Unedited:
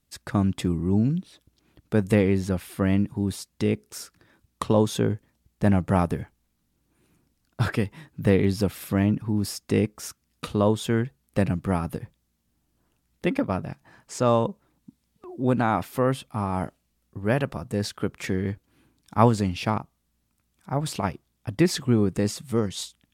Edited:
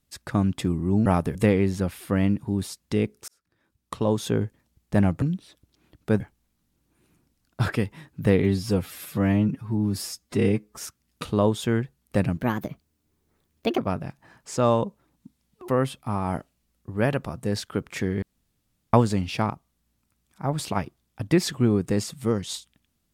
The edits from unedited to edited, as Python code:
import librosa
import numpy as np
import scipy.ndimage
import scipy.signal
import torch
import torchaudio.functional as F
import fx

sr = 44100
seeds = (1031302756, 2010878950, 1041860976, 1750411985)

y = fx.edit(x, sr, fx.swap(start_s=1.06, length_s=0.98, other_s=5.91, other_length_s=0.29),
    fx.fade_in_span(start_s=3.97, length_s=1.15),
    fx.stretch_span(start_s=8.43, length_s=1.56, factor=1.5),
    fx.speed_span(start_s=11.6, length_s=1.81, speed=1.29),
    fx.cut(start_s=15.31, length_s=0.65),
    fx.room_tone_fill(start_s=18.5, length_s=0.71), tone=tone)